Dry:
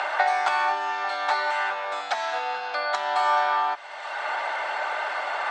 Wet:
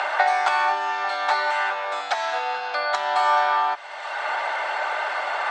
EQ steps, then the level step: peaking EQ 240 Hz -12.5 dB 0.23 oct; +2.5 dB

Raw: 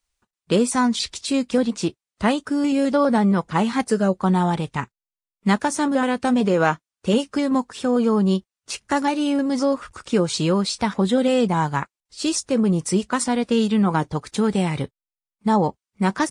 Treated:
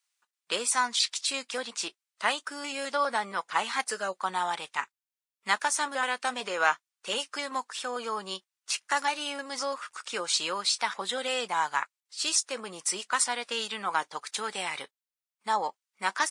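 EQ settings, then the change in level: high-pass 1.1 kHz 12 dB/octave; 0.0 dB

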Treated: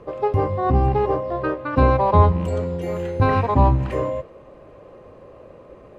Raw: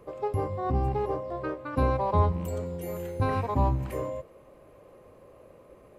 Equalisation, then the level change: band-stop 2.2 kHz, Q 17; dynamic bell 2.3 kHz, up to +3 dB, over -48 dBFS, Q 0.75; distance through air 98 m; +9.0 dB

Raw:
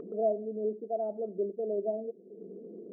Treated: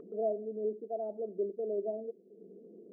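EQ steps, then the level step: dynamic bell 380 Hz, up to +6 dB, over -42 dBFS, Q 0.87; -7.5 dB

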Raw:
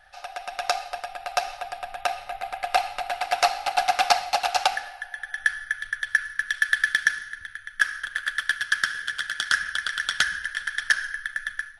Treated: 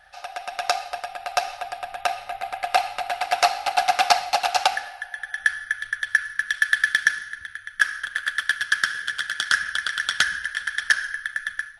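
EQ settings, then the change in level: high-pass 50 Hz 6 dB/octave; +2.0 dB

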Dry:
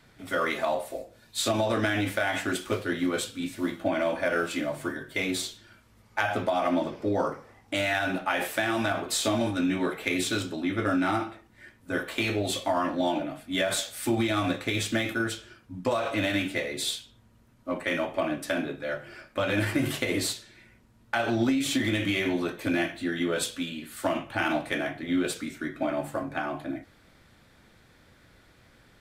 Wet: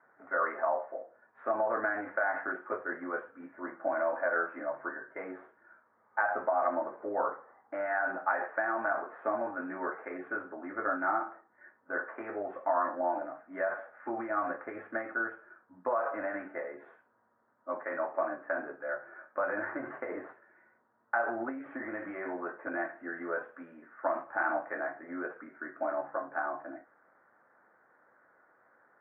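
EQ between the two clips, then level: high-pass 690 Hz 12 dB/octave; steep low-pass 1.7 kHz 48 dB/octave; distance through air 340 m; +2.0 dB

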